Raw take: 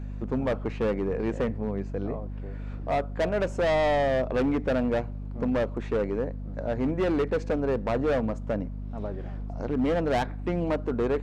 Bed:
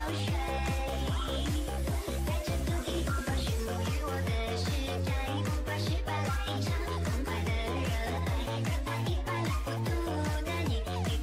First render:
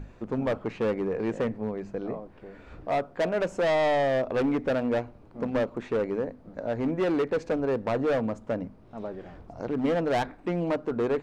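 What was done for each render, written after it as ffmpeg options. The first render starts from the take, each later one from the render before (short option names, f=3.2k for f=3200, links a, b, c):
-af "bandreject=f=50:t=h:w=6,bandreject=f=100:t=h:w=6,bandreject=f=150:t=h:w=6,bandreject=f=200:t=h:w=6,bandreject=f=250:t=h:w=6"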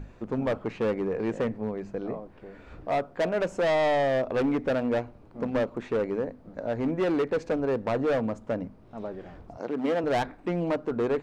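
-filter_complex "[0:a]asettb=1/sr,asplit=3[a][b][c];[a]atrim=end=9.574[d];[b]atrim=start=9.57:end=10.04,asetpts=PTS-STARTPTS,afade=t=in:d=0.004:c=qsin,afade=t=out:st=0.466:d=0.004:c=qsin,highpass=240[e];[c]atrim=start=10.036[f];[d][e]acrossfade=d=0.004:c1=hsin:c2=qsin[g];[g][f]acrossfade=d=0.004:c1=qsin:c2=hsin"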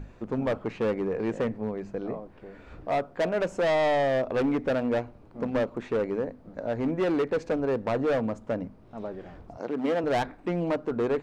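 -af anull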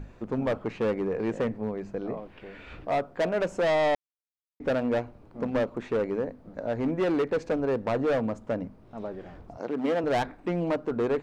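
-filter_complex "[0:a]asettb=1/sr,asplit=3[a][b][c];[a]atrim=end=2.174[d];[b]atrim=start=2.17:end=2.85,asetpts=PTS-STARTPTS,afade=t=in:d=0.004:c=qsin,afade=t=out:st=0.676:d=0.004:c=qsin,equalizer=f=2.8k:w=0.97:g=12.5[e];[c]atrim=start=2.846[f];[d][e]acrossfade=d=0.004:c1=hsin:c2=qsin[g];[g][f]acrossfade=d=0.004:c1=qsin:c2=hsin,asplit=3[h][i][j];[h]atrim=end=3.95,asetpts=PTS-STARTPTS,afade=t=out:st=3.946:d=0.004:c=hsin[k];[i]atrim=start=3.95:end=4.6,asetpts=PTS-STARTPTS,volume=0[l];[j]atrim=start=4.6,asetpts=PTS-STARTPTS,afade=t=in:d=0.004:c=hsin[m];[k][l][m]concat=n=3:v=0:a=1"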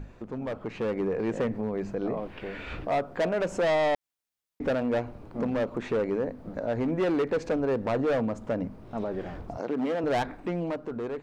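-af "alimiter=level_in=4dB:limit=-24dB:level=0:latency=1:release=119,volume=-4dB,dynaudnorm=f=150:g=11:m=7dB"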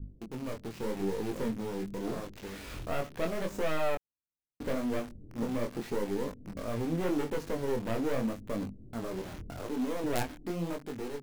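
-filter_complex "[0:a]acrossover=split=380[a][b];[b]acrusher=bits=4:dc=4:mix=0:aa=0.000001[c];[a][c]amix=inputs=2:normalize=0,flanger=delay=19.5:depth=7:speed=0.82"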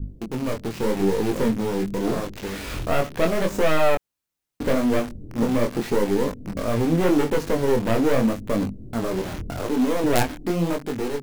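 -af "volume=11.5dB"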